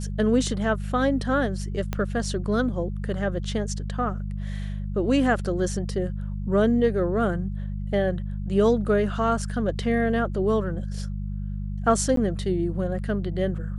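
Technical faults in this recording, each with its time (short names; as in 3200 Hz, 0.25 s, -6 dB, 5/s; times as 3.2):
hum 50 Hz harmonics 4 -30 dBFS
1.93 pop -13 dBFS
12.16–12.17 gap 13 ms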